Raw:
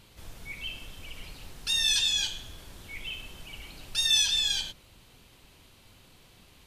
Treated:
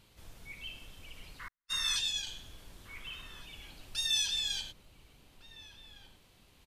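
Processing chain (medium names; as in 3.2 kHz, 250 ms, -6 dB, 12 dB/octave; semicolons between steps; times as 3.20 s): 1.39–1.97 s: painted sound noise 960–2200 Hz -39 dBFS; echo from a far wall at 250 m, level -8 dB; 1.48–2.27 s: gate -27 dBFS, range -55 dB; trim -7 dB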